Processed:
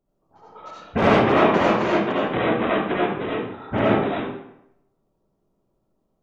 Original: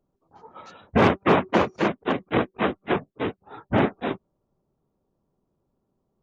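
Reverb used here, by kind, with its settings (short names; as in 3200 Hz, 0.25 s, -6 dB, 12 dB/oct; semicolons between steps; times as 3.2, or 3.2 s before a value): digital reverb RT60 0.79 s, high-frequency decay 0.75×, pre-delay 35 ms, DRR -6.5 dB; gain -3.5 dB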